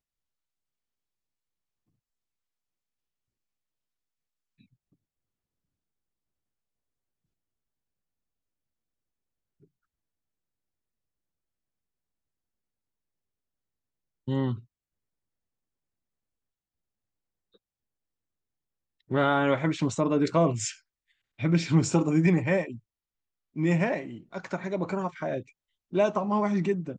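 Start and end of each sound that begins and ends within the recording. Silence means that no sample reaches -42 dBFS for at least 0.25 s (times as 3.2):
14.28–14.6
19.1–20.74
21.39–22.78
23.56–25.42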